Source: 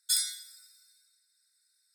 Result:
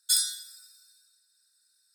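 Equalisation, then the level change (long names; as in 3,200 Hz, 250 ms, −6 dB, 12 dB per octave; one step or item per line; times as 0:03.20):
Butterworth band-reject 2,100 Hz, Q 3.8
+3.5 dB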